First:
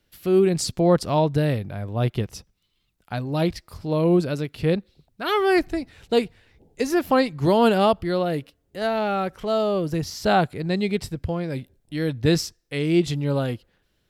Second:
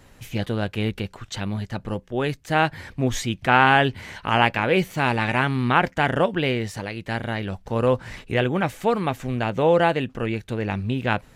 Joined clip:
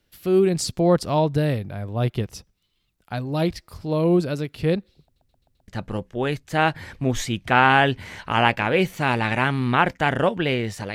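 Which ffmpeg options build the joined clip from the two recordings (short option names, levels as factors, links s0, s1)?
-filter_complex "[0:a]apad=whole_dur=10.94,atrim=end=10.94,asplit=5[s0][s1][s2][s3][s4];[s0]atrim=end=5.162[s5];[s1]atrim=start=5.028:end=5.162[s6];[s2]atrim=start=5.028:end=5.162[s7];[s3]atrim=start=5.028:end=5.162[s8];[s4]atrim=start=5.028:end=5.162[s9];[1:a]atrim=start=1.648:end=6.91[s10];[s5][s6]acrossfade=d=0.004:c1=hsin:c2=hsin[s11];[s11][s7]acrossfade=d=0.004:c1=hsin:c2=hsin[s12];[s12][s8]acrossfade=d=0.004:c1=hsin:c2=hsin[s13];[s13][s9]acrossfade=d=0.004:c1=hsin:c2=hsin[s14];[s14][s10]acrossfade=d=0.004:c1=hsin:c2=hsin"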